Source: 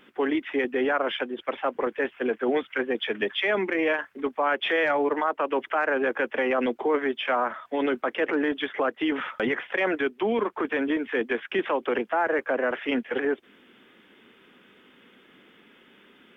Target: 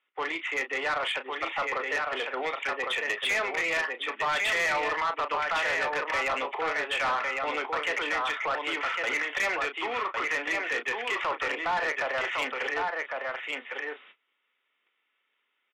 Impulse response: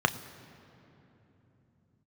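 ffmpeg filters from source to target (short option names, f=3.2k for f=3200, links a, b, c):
-filter_complex "[0:a]lowpass=f=2.9k:w=0.5412,lowpass=f=2.9k:w=1.3066,aecho=1:1:1150:0.562,asplit=2[a][b];[b]aeval=exprs='0.266*sin(PI/2*1.78*val(0)/0.266)':c=same,volume=-7dB[c];[a][c]amix=inputs=2:normalize=0,asplit=2[d][e];[e]adelay=35,volume=-10.5dB[f];[d][f]amix=inputs=2:normalize=0,asetrate=45864,aresample=44100,agate=range=-24dB:threshold=-42dB:ratio=16:detection=peak,highpass=1.1k,bandreject=f=1.6k:w=5.9,asoftclip=type=tanh:threshold=-22.5dB"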